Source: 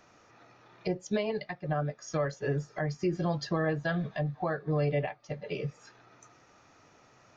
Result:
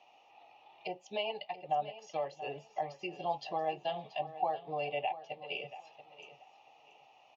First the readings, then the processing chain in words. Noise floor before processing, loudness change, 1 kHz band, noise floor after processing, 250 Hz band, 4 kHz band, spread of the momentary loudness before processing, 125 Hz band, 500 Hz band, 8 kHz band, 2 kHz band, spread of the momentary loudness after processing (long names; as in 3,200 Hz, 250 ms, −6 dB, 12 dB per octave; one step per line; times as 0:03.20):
−61 dBFS, −5.5 dB, +3.5 dB, −63 dBFS, −16.5 dB, +2.5 dB, 7 LU, −21.5 dB, −5.5 dB, can't be measured, −6.5 dB, 13 LU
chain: pair of resonant band-passes 1,500 Hz, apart 1.8 octaves
on a send: repeating echo 682 ms, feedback 23%, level −14 dB
on the sum: level +8.5 dB